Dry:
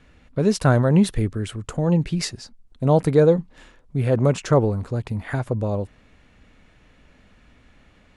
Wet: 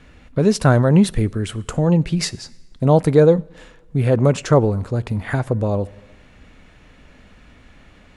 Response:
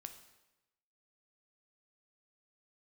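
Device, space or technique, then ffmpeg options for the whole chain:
ducked reverb: -filter_complex "[0:a]asplit=3[a][b][c];[1:a]atrim=start_sample=2205[d];[b][d]afir=irnorm=-1:irlink=0[e];[c]apad=whole_len=360031[f];[e][f]sidechaincompress=threshold=-24dB:ratio=8:attack=7.7:release=938,volume=2dB[g];[a][g]amix=inputs=2:normalize=0,volume=2dB"

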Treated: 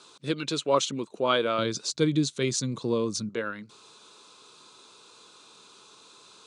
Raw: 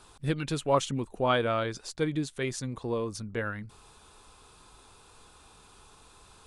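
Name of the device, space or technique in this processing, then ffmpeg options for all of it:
television speaker: -filter_complex "[0:a]asettb=1/sr,asplit=3[a][b][c];[a]atrim=end=1.584[d];[b]atrim=start=1.58:end=3.29,asetpts=PTS-STARTPTS,afade=t=in:d=0.004:c=qsin,afade=t=out:st=1.706:d=0.004:c=qsin,bass=f=250:g=13,treble=f=4k:g=5[e];[c]atrim=start=3.286[f];[d][e]acrossfade=d=0.004:c1=hsin:c2=qsin[g];[g][f]acrossfade=d=0.004:c1=qsin:c2=hsin,highpass=f=170:w=0.5412,highpass=f=170:w=1.3066,equalizer=f=170:t=q:w=4:g=-6,equalizer=f=250:t=q:w=4:g=-4,equalizer=f=770:t=q:w=4:g=-10,equalizer=f=1.8k:t=q:w=4:g=-7,equalizer=f=4k:t=q:w=4:g=7,equalizer=f=6.3k:t=q:w=4:g=4,lowpass=f=8.2k:w=0.5412,lowpass=f=8.2k:w=1.3066,volume=3.5dB"

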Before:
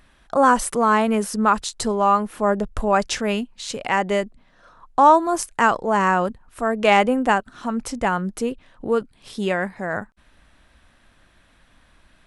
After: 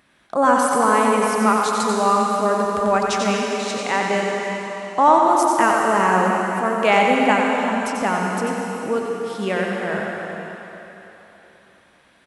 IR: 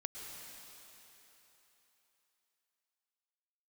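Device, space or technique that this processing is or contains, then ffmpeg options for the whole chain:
PA in a hall: -filter_complex "[0:a]highpass=170,lowshelf=f=130:g=5,equalizer=f=2.2k:t=o:w=0.23:g=3,aecho=1:1:91:0.531[a];[1:a]atrim=start_sample=2205[b];[a][b]afir=irnorm=-1:irlink=0,volume=2dB"

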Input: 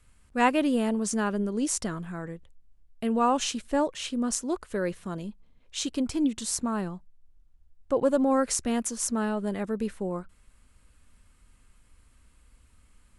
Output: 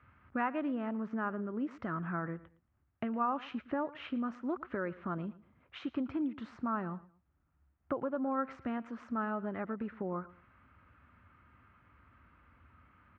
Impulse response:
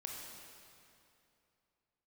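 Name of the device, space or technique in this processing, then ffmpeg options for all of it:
bass amplifier: -filter_complex "[0:a]acompressor=threshold=-36dB:ratio=5,highpass=f=79:w=0.5412,highpass=f=79:w=1.3066,equalizer=f=200:t=q:w=4:g=-4,equalizer=f=460:t=q:w=4:g=-7,equalizer=f=1.3k:t=q:w=4:g=8,lowpass=f=2.2k:w=0.5412,lowpass=f=2.2k:w=1.3066,asettb=1/sr,asplit=3[a][b][c];[a]atrim=end=0.924[d];[b]atrim=start=0.92:end=1.71,asetpts=PTS-STARTPTS,afade=t=in:d=0.004:c=qsin,afade=t=out:st=0.786:d=0.004:c=qsin,lowpass=f=2.7k:p=1[e];[c]atrim=start=1.706[f];[d][e]acrossfade=d=0.004:c1=hsin:c2=qsin[g];[g][f]acrossfade=d=0.004:c1=qsin:c2=hsin,aecho=1:1:113|226:0.112|0.0325,volume=4dB"

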